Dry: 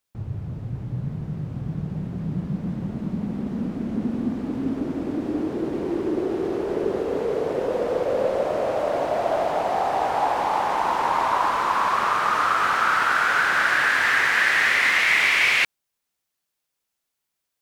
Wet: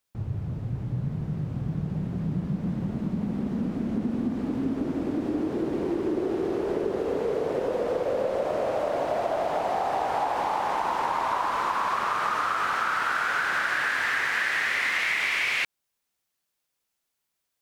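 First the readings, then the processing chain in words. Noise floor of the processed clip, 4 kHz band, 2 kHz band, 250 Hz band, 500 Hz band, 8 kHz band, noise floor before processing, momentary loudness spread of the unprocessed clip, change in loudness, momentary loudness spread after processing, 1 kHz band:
-81 dBFS, -6.5 dB, -6.5 dB, -1.5 dB, -3.0 dB, -6.0 dB, -81 dBFS, 13 LU, -5.0 dB, 7 LU, -5.0 dB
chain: compressor, threshold -23 dBFS, peak gain reduction 8 dB

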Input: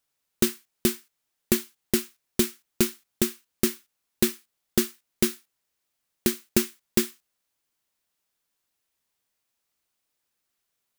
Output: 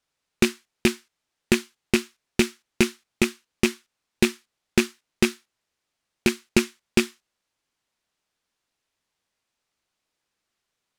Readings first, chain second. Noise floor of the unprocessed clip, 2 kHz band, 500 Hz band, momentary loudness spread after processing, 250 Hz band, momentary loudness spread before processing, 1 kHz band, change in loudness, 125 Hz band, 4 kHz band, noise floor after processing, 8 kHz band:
-80 dBFS, +9.5 dB, +3.0 dB, 2 LU, +3.5 dB, 5 LU, +6.5 dB, +2.0 dB, +3.5 dB, +3.0 dB, -82 dBFS, -2.5 dB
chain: rattling part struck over -26 dBFS, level -11 dBFS; air absorption 58 m; gain +3.5 dB

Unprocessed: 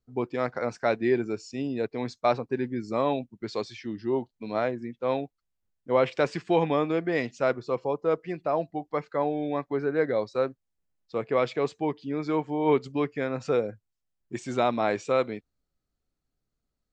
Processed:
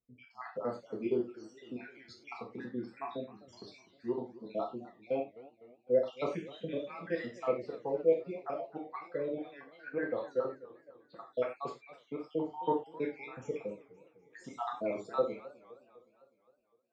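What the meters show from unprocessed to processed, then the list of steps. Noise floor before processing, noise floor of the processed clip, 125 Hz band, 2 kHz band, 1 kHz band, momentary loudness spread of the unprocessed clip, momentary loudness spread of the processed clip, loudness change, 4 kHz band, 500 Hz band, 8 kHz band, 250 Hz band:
-82 dBFS, -70 dBFS, -14.0 dB, -11.5 dB, -11.0 dB, 8 LU, 19 LU, -8.5 dB, -13.0 dB, -8.0 dB, n/a, -10.5 dB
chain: random spectral dropouts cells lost 70%; HPF 620 Hz 6 dB/oct; tilt -2.5 dB/oct; non-linear reverb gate 0.13 s falling, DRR -2.5 dB; warbling echo 0.256 s, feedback 56%, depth 202 cents, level -19 dB; gain -7 dB

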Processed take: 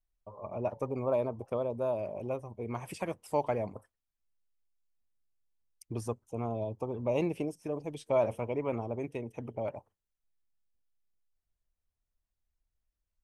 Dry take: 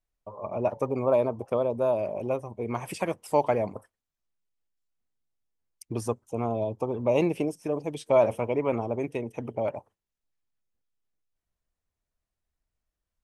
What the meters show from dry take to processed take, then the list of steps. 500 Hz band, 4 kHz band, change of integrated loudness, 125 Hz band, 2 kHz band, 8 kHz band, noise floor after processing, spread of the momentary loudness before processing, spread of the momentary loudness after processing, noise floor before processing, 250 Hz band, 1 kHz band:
-6.5 dB, -7.0 dB, -6.5 dB, -4.0 dB, -7.0 dB, -7.0 dB, under -85 dBFS, 10 LU, 10 LU, under -85 dBFS, -6.0 dB, -7.0 dB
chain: low shelf 82 Hz +10.5 dB; gain -7 dB

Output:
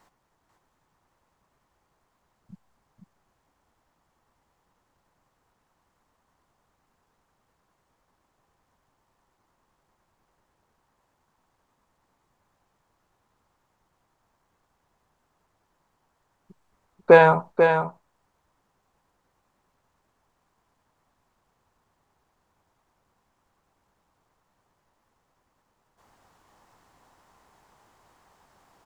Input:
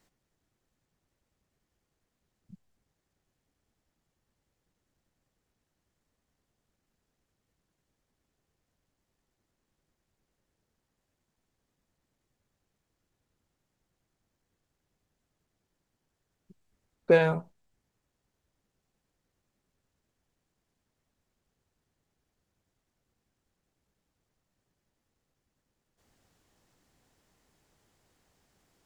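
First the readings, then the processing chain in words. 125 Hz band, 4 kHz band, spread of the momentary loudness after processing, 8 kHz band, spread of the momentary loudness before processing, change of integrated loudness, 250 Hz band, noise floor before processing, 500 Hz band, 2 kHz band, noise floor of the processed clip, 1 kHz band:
+5.0 dB, +6.0 dB, 12 LU, n/a, 10 LU, +7.5 dB, +5.5 dB, -83 dBFS, +9.0 dB, +10.5 dB, -74 dBFS, +17.0 dB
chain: bell 990 Hz +14.5 dB 1.3 oct; echo 0.491 s -6.5 dB; gain +3.5 dB

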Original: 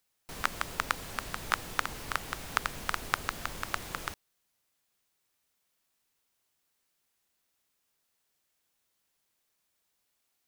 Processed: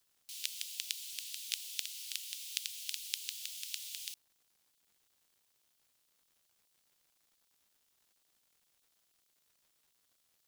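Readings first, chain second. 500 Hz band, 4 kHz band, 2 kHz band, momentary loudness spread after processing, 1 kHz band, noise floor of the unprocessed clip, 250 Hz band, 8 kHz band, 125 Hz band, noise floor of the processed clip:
under -35 dB, +1.0 dB, -15.5 dB, 4 LU, under -40 dB, -79 dBFS, under -40 dB, +2.0 dB, under -40 dB, -76 dBFS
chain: steep high-pass 2900 Hz 36 dB/oct; crackle 270/s -64 dBFS; gain +2 dB

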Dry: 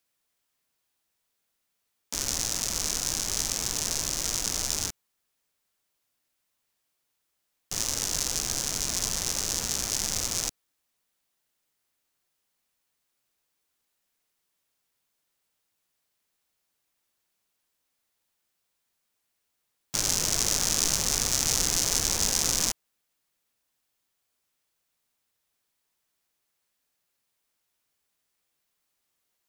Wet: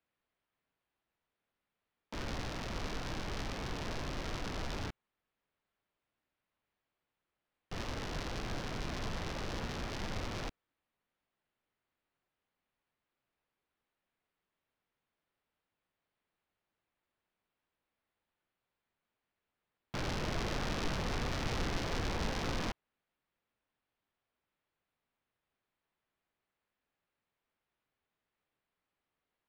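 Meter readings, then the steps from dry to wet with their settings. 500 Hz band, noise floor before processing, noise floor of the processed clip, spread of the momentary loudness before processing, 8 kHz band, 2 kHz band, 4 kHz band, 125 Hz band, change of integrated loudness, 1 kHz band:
-1.0 dB, -79 dBFS, under -85 dBFS, 6 LU, -27.0 dB, -4.0 dB, -14.5 dB, 0.0 dB, -13.5 dB, -2.0 dB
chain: air absorption 410 m

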